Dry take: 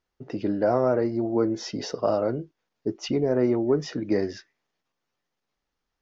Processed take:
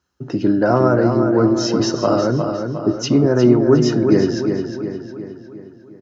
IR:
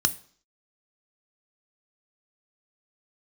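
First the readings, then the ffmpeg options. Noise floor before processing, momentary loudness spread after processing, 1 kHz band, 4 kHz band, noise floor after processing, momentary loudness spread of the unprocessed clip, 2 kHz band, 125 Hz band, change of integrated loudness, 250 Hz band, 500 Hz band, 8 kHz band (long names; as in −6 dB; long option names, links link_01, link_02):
−83 dBFS, 14 LU, +9.0 dB, +10.5 dB, −43 dBFS, 11 LU, +11.0 dB, +14.0 dB, +9.0 dB, +11.5 dB, +8.0 dB, can't be measured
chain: -filter_complex "[0:a]asplit=2[link_01][link_02];[link_02]adelay=358,lowpass=frequency=4500:poles=1,volume=-6dB,asplit=2[link_03][link_04];[link_04]adelay=358,lowpass=frequency=4500:poles=1,volume=0.53,asplit=2[link_05][link_06];[link_06]adelay=358,lowpass=frequency=4500:poles=1,volume=0.53,asplit=2[link_07][link_08];[link_08]adelay=358,lowpass=frequency=4500:poles=1,volume=0.53,asplit=2[link_09][link_10];[link_10]adelay=358,lowpass=frequency=4500:poles=1,volume=0.53,asplit=2[link_11][link_12];[link_12]adelay=358,lowpass=frequency=4500:poles=1,volume=0.53,asplit=2[link_13][link_14];[link_14]adelay=358,lowpass=frequency=4500:poles=1,volume=0.53[link_15];[link_01][link_03][link_05][link_07][link_09][link_11][link_13][link_15]amix=inputs=8:normalize=0[link_16];[1:a]atrim=start_sample=2205[link_17];[link_16][link_17]afir=irnorm=-1:irlink=0,volume=-1dB"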